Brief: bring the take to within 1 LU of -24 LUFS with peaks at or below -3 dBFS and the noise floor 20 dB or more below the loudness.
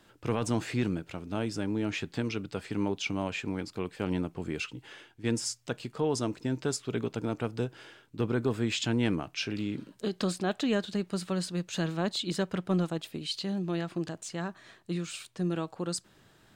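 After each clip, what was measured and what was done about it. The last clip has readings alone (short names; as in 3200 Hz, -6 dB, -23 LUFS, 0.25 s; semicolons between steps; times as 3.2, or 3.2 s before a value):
loudness -32.5 LUFS; peak -18.0 dBFS; loudness target -24.0 LUFS
-> gain +8.5 dB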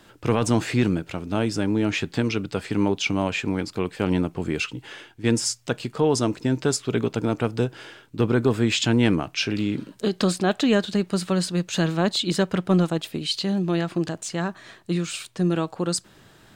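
loudness -24.0 LUFS; peak -9.5 dBFS; noise floor -53 dBFS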